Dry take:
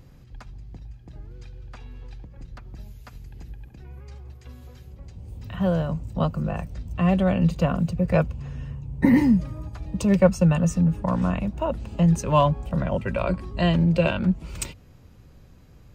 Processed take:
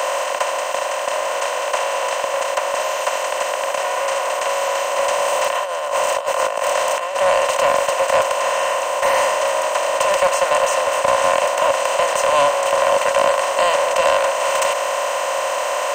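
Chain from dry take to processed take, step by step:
compressor on every frequency bin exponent 0.2
Butterworth high-pass 560 Hz 36 dB per octave
0:04.96–0:07.21: compressor whose output falls as the input rises −21 dBFS, ratio −0.5
soft clipping −10.5 dBFS, distortion −18 dB
level +3 dB

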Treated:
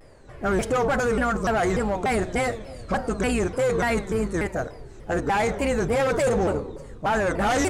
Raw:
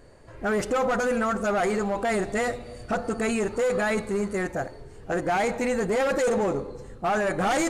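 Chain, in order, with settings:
sub-octave generator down 2 octaves, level −4 dB
pitch modulation by a square or saw wave saw down 3.4 Hz, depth 250 cents
level +1.5 dB

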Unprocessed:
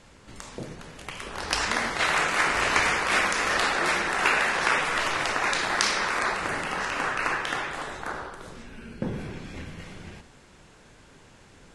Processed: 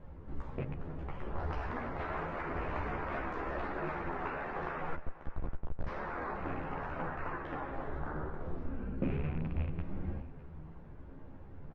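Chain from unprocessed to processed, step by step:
loose part that buzzes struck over −36 dBFS, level −16 dBFS
flanger 0.83 Hz, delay 5.4 ms, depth 2.4 ms, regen +86%
downward compressor 2 to 1, threshold −39 dBFS, peak gain reduction 9.5 dB
low-shelf EQ 180 Hz +9.5 dB
0:04.95–0:05.87: comparator with hysteresis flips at −27.5 dBFS
low-pass filter 1,000 Hz 12 dB per octave
single-tap delay 604 ms −19 dB
multi-voice chorus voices 4, 0.41 Hz, delay 13 ms, depth 1.9 ms
0:08.31–0:08.85: double-tracking delay 25 ms −5 dB
convolution reverb RT60 3.4 s, pre-delay 55 ms, DRR 19 dB
level +5.5 dB

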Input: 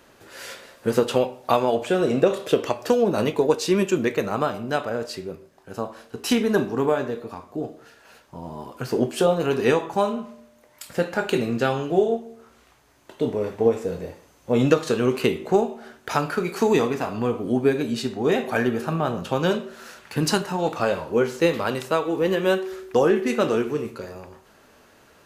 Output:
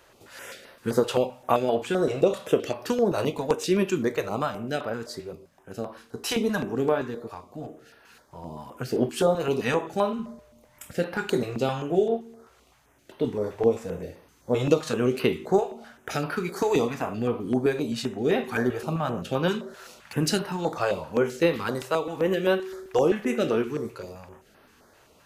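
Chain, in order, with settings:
0:10.19–0:10.92: low-shelf EQ 190 Hz +11 dB
notch on a step sequencer 7.7 Hz 230–7,200 Hz
level −2 dB

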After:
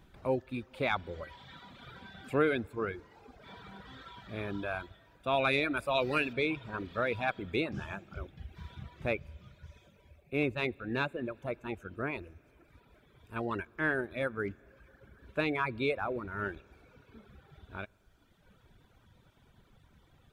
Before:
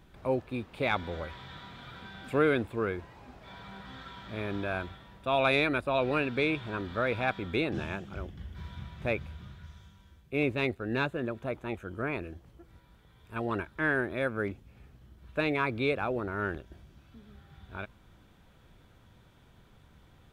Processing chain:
0:05.77–0:06.33: high-shelf EQ 3,100 Hz +11.5 dB
convolution reverb RT60 4.6 s, pre-delay 6 ms, DRR 14.5 dB
reverb reduction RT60 1.3 s
level −1.5 dB

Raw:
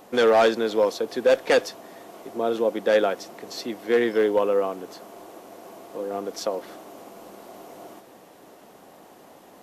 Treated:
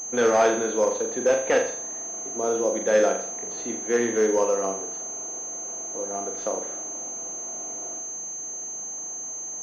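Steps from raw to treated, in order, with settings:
flutter between parallel walls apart 7.1 metres, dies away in 0.5 s
switching amplifier with a slow clock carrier 6,300 Hz
level −2.5 dB

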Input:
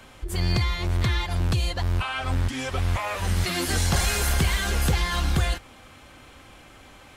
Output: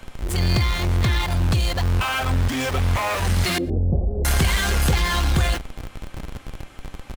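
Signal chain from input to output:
in parallel at −7 dB: comparator with hysteresis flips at −39.5 dBFS
0:03.58–0:04.25: on the sum: Butterworth low-pass 580 Hz 36 dB per octave
slap from a distant wall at 20 metres, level −26 dB
level +1.5 dB

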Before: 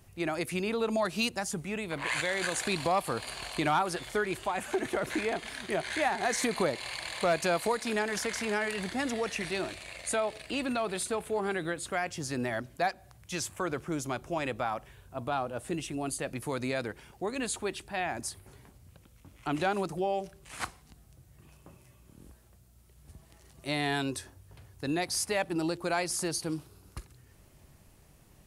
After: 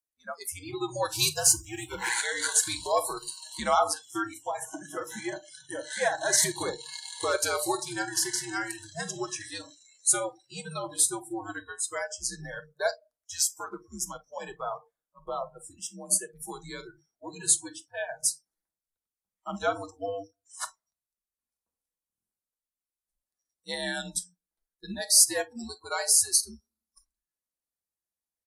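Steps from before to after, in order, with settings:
high-pass filter 200 Hz 6 dB per octave
parametric band 2,800 Hz −14.5 dB 0.48 octaves
0:01.12–0:02.09: power curve on the samples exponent 0.7
downsampling to 32,000 Hz
on a send at −5 dB: convolution reverb RT60 0.65 s, pre-delay 7 ms
on the sum: noise reduction from a noise print of the clip's start 29 dB
spectral tilt +3 dB per octave
frequency shifter −92 Hz
expander for the loud parts 1.5 to 1, over −47 dBFS
level +5 dB

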